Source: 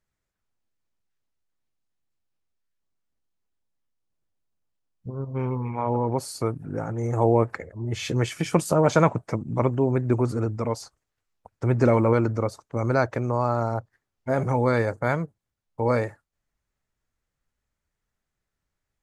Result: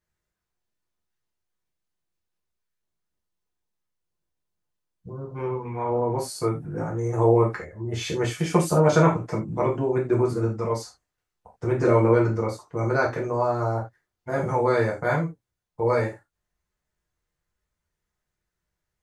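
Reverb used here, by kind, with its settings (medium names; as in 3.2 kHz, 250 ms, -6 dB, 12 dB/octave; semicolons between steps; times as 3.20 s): gated-style reverb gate 110 ms falling, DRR -3.5 dB; trim -4.5 dB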